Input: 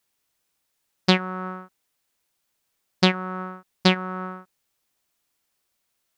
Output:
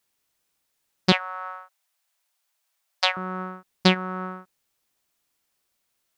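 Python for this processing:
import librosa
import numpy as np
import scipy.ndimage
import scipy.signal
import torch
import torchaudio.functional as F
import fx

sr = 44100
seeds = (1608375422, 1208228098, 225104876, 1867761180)

y = fx.steep_highpass(x, sr, hz=570.0, slope=72, at=(1.12, 3.17))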